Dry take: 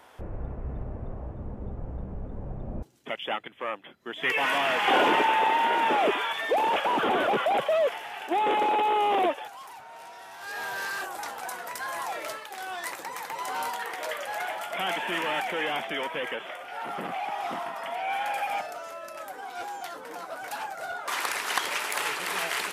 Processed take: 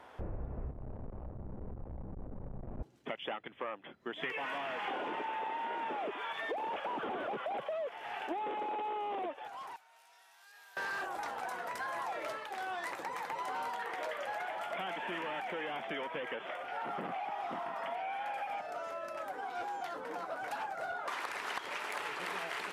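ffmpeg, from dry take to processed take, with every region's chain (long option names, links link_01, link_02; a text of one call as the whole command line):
ffmpeg -i in.wav -filter_complex "[0:a]asettb=1/sr,asplit=3[link_01][link_02][link_03];[link_01]atrim=end=0.714[link_04];[link_02]atrim=start=0.71:end=2.8,asetpts=PTS-STARTPTS,afade=type=in:duration=0.004:curve=qsin,afade=type=out:start_time=2.086:duration=0.004:curve=qsin,equalizer=frequency=970:width=1.8:gain=4,aeval=exprs='(tanh(112*val(0)+0.75)-tanh(0.75))/112':channel_layout=same,adynamicsmooth=sensitivity=3.5:basefreq=870[link_05];[link_03]atrim=start=2.796[link_06];[link_04][link_05]acrossfade=duration=0.004:curve1=hsin:curve2=qsin[link_07];[link_07][link_06]acrossfade=duration=0.004:curve1=qsin:curve2=hsin,asettb=1/sr,asplit=3[link_08][link_09][link_10];[link_08]atrim=end=9.764[link_11];[link_09]atrim=start=9.76:end=10.77,asetpts=PTS-STARTPTS,afade=type=in:duration=0.004:curve=qsin,afade=type=out:start_time=1.006:duration=0.004:curve=qsin,aderivative,acompressor=threshold=-52dB:ratio=2.5:attack=3.2:release=140:knee=1:detection=peak[link_12];[link_10]atrim=start=10.766[link_13];[link_11][link_12]acrossfade=duration=0.004:curve1=hsin:curve2=qsin[link_14];[link_14][link_13]acrossfade=duration=0.004:curve1=qsin:curve2=hsin,lowpass=frequency=2100:poles=1,acompressor=threshold=-35dB:ratio=16" out.wav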